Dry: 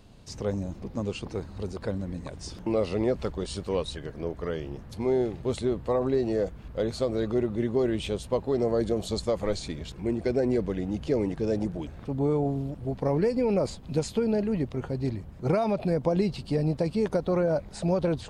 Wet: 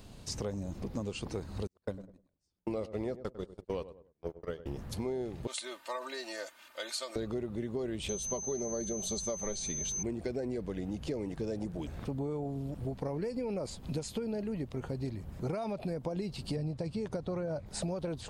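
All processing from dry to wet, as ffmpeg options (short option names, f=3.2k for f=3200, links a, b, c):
-filter_complex "[0:a]asettb=1/sr,asplit=3[a][b][c];[a]atrim=end=1.674[d];[b]atrim=start=1.67:end=4.66,asetpts=PTS-STARTPTS,afade=t=in:d=0.004:c=qsin,afade=t=out:st=2.986:d=0.004:c=qsin,agate=range=-47dB:threshold=-30dB:ratio=16:release=100:detection=peak,asplit=2[e][f];[f]adelay=99,lowpass=f=1.1k:p=1,volume=-15.5dB,asplit=2[g][h];[h]adelay=99,lowpass=f=1.1k:p=1,volume=0.25,asplit=2[i][j];[j]adelay=99,lowpass=f=1.1k:p=1,volume=0.25[k];[e][g][i][k]amix=inputs=4:normalize=0,atrim=end_sample=131859[l];[c]atrim=start=4.656[m];[d][l]acrossfade=d=0.004:c1=hsin:c2=qsin[n];[n][m]acrossfade=d=0.004:c1=qsin:c2=hsin,asettb=1/sr,asplit=3[o][p][q];[o]atrim=end=5.474[r];[p]atrim=start=5.47:end=7.16,asetpts=PTS-STARTPTS,afade=t=in:d=0.004:c=qsin,afade=t=out:st=1.686:d=0.004:c=qsin,highpass=1.3k,aecho=1:1:3.3:0.86,atrim=end_sample=74529[s];[q]atrim=start=7.156[t];[r][s]acrossfade=d=0.004:c1=hsin:c2=qsin[u];[u][t]acrossfade=d=0.004:c1=qsin:c2=hsin,asettb=1/sr,asplit=3[v][w][x];[v]atrim=end=8.094[y];[w]atrim=start=8.09:end=10.03,asetpts=PTS-STARTPTS,afade=t=in:d=0.004:c=qsin,afade=t=out:st=1.936:d=0.004:c=qsin,aecho=1:1:5.1:0.46,atrim=end_sample=85554,aeval=exprs='val(0)+0.0224*sin(2*PI*6200*n/s)':c=same[z];[x]atrim=start=10.026[aa];[y][z]acrossfade=d=0.004:c1=hsin:c2=qsin[ab];[ab][aa]acrossfade=d=0.004:c1=qsin:c2=hsin,asettb=1/sr,asplit=3[ac][ad][ae];[ac]atrim=end=16.564[af];[ad]atrim=start=16.56:end=17.66,asetpts=PTS-STARTPTS,afade=t=in:d=0.004:c=qsin,afade=t=out:st=1.096:d=0.004:c=qsin,lowpass=8.8k,equalizer=f=110:w=2.2:g=11.5[ag];[ae]atrim=start=17.656[ah];[af][ag]acrossfade=d=0.004:c1=hsin:c2=qsin[ai];[ai][ah]acrossfade=d=0.004:c1=qsin:c2=hsin,highshelf=f=6.5k:g=8.5,acompressor=threshold=-35dB:ratio=6,volume=1.5dB"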